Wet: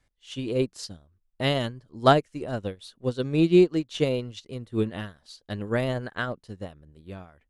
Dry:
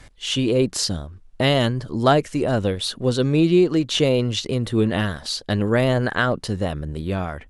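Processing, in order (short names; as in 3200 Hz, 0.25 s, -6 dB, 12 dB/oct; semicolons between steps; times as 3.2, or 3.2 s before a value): upward expander 2.5:1, over -29 dBFS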